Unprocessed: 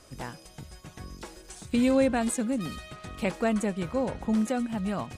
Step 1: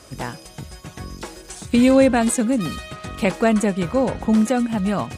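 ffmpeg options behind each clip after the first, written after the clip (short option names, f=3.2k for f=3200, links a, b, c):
-af "highpass=45,volume=9dB"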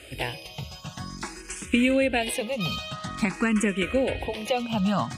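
-filter_complex "[0:a]equalizer=f=2.7k:w=1.6:g=11.5,acompressor=threshold=-17dB:ratio=6,asplit=2[a][b];[b]afreqshift=0.5[c];[a][c]amix=inputs=2:normalize=1"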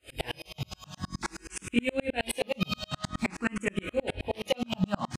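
-filter_complex "[0:a]acompressor=threshold=-27dB:ratio=2,asplit=2[a][b];[b]aecho=0:1:21|55:0.596|0.224[c];[a][c]amix=inputs=2:normalize=0,aeval=exprs='val(0)*pow(10,-38*if(lt(mod(-9.5*n/s,1),2*abs(-9.5)/1000),1-mod(-9.5*n/s,1)/(2*abs(-9.5)/1000),(mod(-9.5*n/s,1)-2*abs(-9.5)/1000)/(1-2*abs(-9.5)/1000))/20)':c=same,volume=5.5dB"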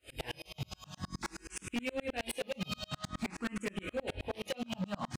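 -af "volume=26.5dB,asoftclip=hard,volume=-26.5dB,volume=-4dB"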